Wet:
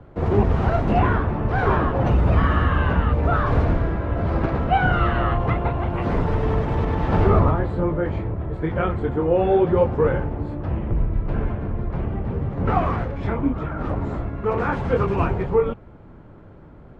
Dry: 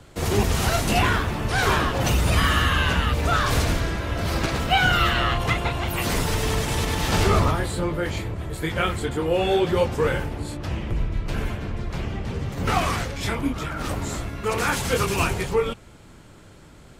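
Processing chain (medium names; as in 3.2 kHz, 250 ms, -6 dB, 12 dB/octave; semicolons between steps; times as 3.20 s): low-pass 1.1 kHz 12 dB/octave; trim +3.5 dB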